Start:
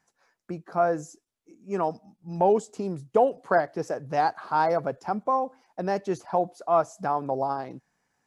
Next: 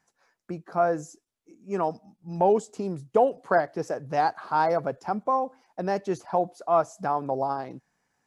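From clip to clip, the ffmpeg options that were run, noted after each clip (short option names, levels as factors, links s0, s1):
-af anull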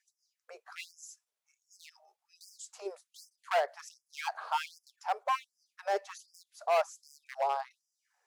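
-af "aeval=exprs='0.355*(cos(1*acos(clip(val(0)/0.355,-1,1)))-cos(1*PI/2))+0.01*(cos(7*acos(clip(val(0)/0.355,-1,1)))-cos(7*PI/2))':c=same,volume=14.1,asoftclip=hard,volume=0.0708,afftfilt=real='re*gte(b*sr/1024,380*pow(4900/380,0.5+0.5*sin(2*PI*1.3*pts/sr)))':imag='im*gte(b*sr/1024,380*pow(4900/380,0.5+0.5*sin(2*PI*1.3*pts/sr)))':win_size=1024:overlap=0.75"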